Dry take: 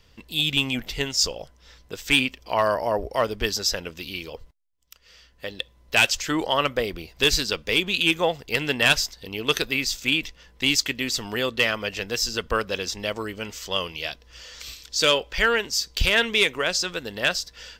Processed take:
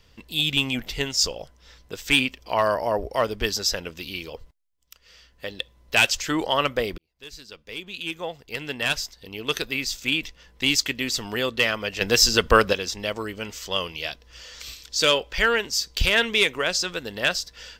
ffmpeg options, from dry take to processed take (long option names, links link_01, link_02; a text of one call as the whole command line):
ffmpeg -i in.wav -filter_complex "[0:a]asplit=4[link_01][link_02][link_03][link_04];[link_01]atrim=end=6.98,asetpts=PTS-STARTPTS,afade=type=out:start_time=6.976:duration=0.004:curve=hsin[link_05];[link_02]atrim=start=6.98:end=12.012,asetpts=PTS-STARTPTS,afade=type=in:duration=3.75[link_06];[link_03]atrim=start=12.008:end=12.732,asetpts=PTS-STARTPTS,volume=8dB[link_07];[link_04]atrim=start=12.728[link_08];[link_05][link_06]concat=n=2:v=0:a=1[link_09];[link_09][link_07]acrossfade=duration=0.004:curve1=hsin:curve2=hsin[link_10];[link_10][link_08]acrossfade=duration=0.004:curve1=hsin:curve2=hsin" out.wav